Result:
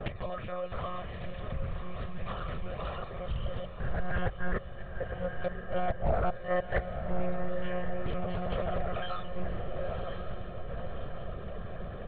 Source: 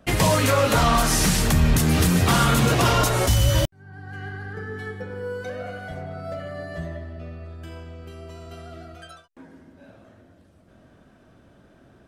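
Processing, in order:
mu-law and A-law mismatch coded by mu
gate with flip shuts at −23 dBFS, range −25 dB
reverb reduction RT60 0.89 s
one-pitch LPC vocoder at 8 kHz 180 Hz
on a send: feedback delay with all-pass diffusion 1,028 ms, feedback 51%, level −9 dB
on the sum: noise gate with hold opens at −44 dBFS
in parallel at −1 dB: brickwall limiter −34 dBFS, peak gain reduction 12.5 dB
on the sum: high-shelf EQ 2,700 Hz −10 dB
comb filter 1.7 ms, depth 67%
highs frequency-modulated by the lows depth 0.5 ms
level +2 dB

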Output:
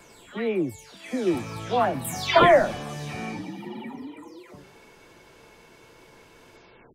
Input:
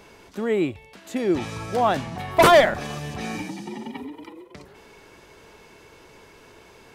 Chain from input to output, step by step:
every frequency bin delayed by itself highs early, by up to 380 ms
level −1.5 dB

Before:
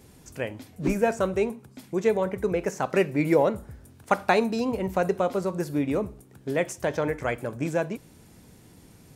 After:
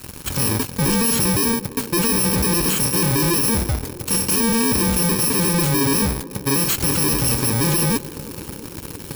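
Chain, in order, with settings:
samples in bit-reversed order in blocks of 64 samples
fuzz pedal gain 43 dB, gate −51 dBFS
feedback echo with a band-pass in the loop 337 ms, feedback 83%, band-pass 380 Hz, level −15 dB
level −3 dB

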